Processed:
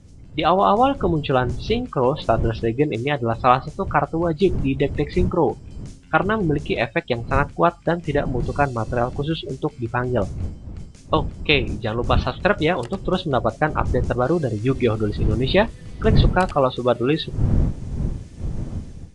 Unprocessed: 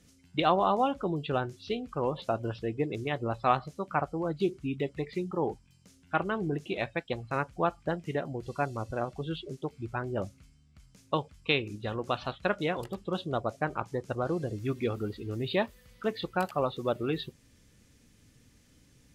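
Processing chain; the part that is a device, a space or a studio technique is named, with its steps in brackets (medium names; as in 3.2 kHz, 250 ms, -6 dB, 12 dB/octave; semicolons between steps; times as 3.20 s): smartphone video outdoors (wind noise 120 Hz -38 dBFS; level rider gain up to 10 dB; trim +1.5 dB; AAC 96 kbps 22.05 kHz)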